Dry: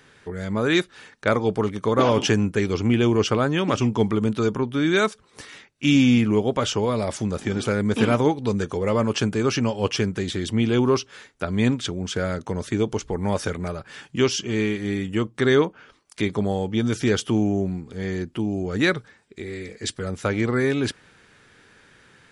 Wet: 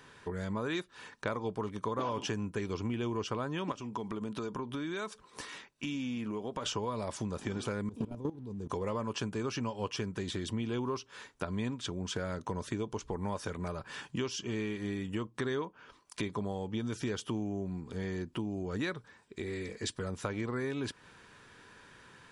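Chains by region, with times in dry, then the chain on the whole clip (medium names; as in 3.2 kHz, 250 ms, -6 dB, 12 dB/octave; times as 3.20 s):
3.72–6.66 s: peaking EQ 95 Hz -7.5 dB 0.88 oct + compression 3:1, threshold -31 dBFS
7.89–8.70 s: FFT filter 180 Hz 0 dB, 350 Hz -2 dB, 1.7 kHz -23 dB, 2.5 kHz -17 dB, 9 kHz -10 dB + waveshaping leveller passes 1 + level held to a coarse grid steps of 18 dB
whole clip: peaking EQ 1 kHz +10.5 dB 0.2 oct; band-stop 2.1 kHz, Q 17; compression 4:1, threshold -31 dBFS; trim -3 dB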